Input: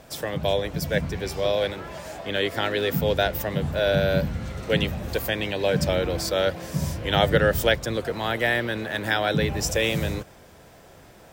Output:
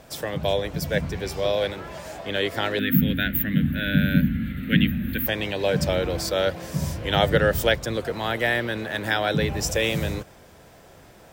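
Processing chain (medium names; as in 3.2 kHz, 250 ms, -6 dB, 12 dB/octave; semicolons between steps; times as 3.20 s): 2.79–5.27 s: FFT filter 120 Hz 0 dB, 260 Hz +14 dB, 380 Hz -10 dB, 940 Hz -23 dB, 1.6 kHz +5 dB, 3.6 kHz -1 dB, 5.7 kHz -28 dB, 14 kHz +8 dB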